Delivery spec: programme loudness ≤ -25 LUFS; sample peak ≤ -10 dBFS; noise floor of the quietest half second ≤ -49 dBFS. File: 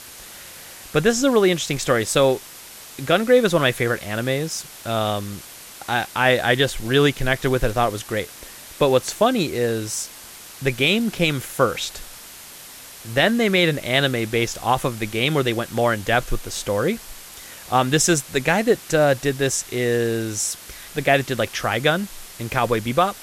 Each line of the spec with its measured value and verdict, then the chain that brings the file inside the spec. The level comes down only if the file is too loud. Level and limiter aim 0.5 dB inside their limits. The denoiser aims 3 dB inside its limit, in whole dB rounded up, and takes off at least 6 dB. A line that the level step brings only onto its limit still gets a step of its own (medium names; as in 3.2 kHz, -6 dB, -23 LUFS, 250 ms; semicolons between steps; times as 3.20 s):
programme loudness -20.5 LUFS: fail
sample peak -5.0 dBFS: fail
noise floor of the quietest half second -41 dBFS: fail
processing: noise reduction 6 dB, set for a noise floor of -41 dBFS; trim -5 dB; peak limiter -10.5 dBFS